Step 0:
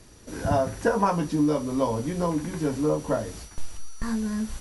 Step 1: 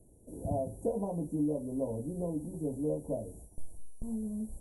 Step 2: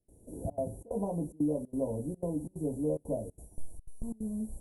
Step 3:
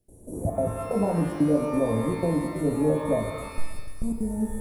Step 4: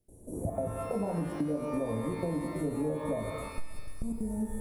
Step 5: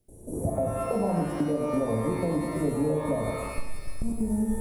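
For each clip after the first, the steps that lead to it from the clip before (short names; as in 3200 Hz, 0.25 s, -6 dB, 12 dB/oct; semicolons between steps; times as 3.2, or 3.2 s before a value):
inverse Chebyshev band-stop 1200–5300 Hz, stop band 40 dB; gain -8.5 dB
step gate ".xxxxx.xxx" 182 bpm -24 dB; gain +1.5 dB
shimmer reverb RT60 1.3 s, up +12 st, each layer -8 dB, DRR 5.5 dB; gain +8.5 dB
compressor, threshold -25 dBFS, peak gain reduction 8.5 dB; gain -3.5 dB
non-linear reverb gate 0.13 s rising, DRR 4 dB; gain +5 dB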